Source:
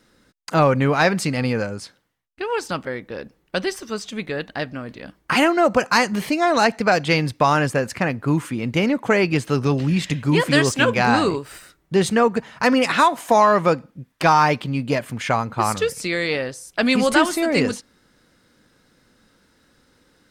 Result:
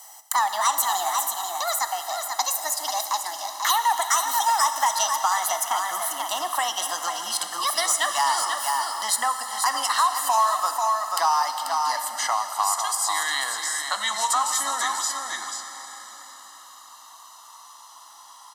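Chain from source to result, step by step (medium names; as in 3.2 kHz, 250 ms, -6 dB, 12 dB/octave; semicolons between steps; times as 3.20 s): gliding tape speed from 154% -> 65%; static phaser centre 1 kHz, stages 4; on a send: delay 488 ms -9.5 dB; on the sum: compression 2:1, threshold -25 dBFS, peak gain reduction 8 dB; Bessel high-pass 720 Hz, order 6; comb 1 ms, depth 71%; in parallel at -10 dB: saturation -21 dBFS, distortion -13 dB; on the sum: treble shelf 5.4 kHz +10.5 dB; plate-style reverb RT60 3.2 s, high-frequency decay 0.95×, DRR 7.5 dB; three bands compressed up and down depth 40%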